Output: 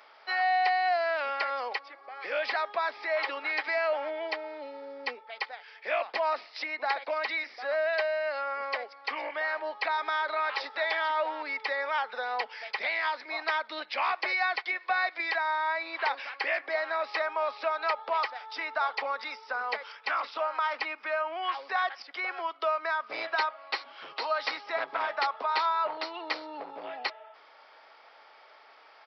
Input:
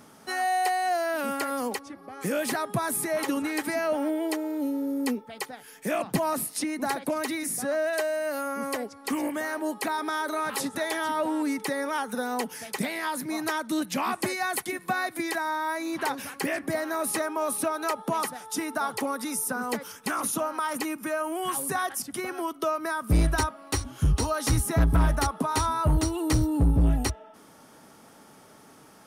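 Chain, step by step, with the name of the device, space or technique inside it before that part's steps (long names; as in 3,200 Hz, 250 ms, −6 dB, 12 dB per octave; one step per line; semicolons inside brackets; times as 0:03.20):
musical greeting card (downsampling to 11,025 Hz; high-pass filter 570 Hz 24 dB per octave; parametric band 2,200 Hz +6.5 dB 0.41 octaves)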